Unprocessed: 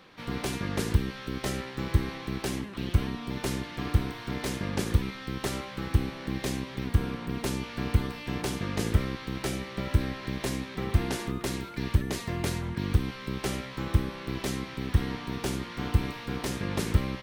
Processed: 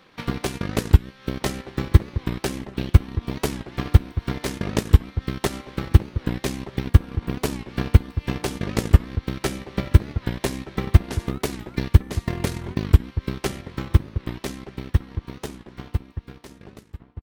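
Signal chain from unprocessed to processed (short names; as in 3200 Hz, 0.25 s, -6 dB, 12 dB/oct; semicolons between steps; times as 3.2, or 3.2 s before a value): ending faded out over 4.51 s; transient shaper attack +11 dB, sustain -9 dB; outdoor echo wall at 210 m, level -13 dB; record warp 45 rpm, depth 160 cents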